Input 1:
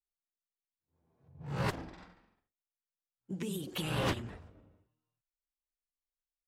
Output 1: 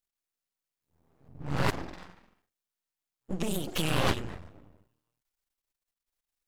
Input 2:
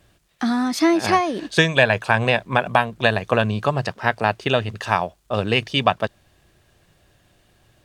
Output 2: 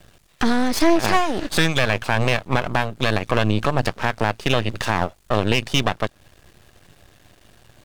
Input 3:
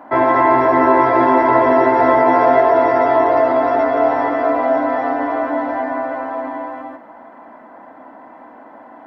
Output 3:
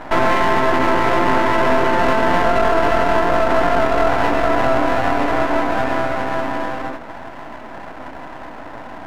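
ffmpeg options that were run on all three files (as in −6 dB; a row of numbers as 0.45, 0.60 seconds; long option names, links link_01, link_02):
-filter_complex "[0:a]asplit=2[link_01][link_02];[link_02]acompressor=threshold=-29dB:ratio=6,volume=1.5dB[link_03];[link_01][link_03]amix=inputs=2:normalize=0,aeval=exprs='max(val(0),0)':channel_layout=same,alimiter=level_in=6.5dB:limit=-1dB:release=50:level=0:latency=1,volume=-3dB"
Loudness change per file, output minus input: +5.0, −1.0, −2.5 LU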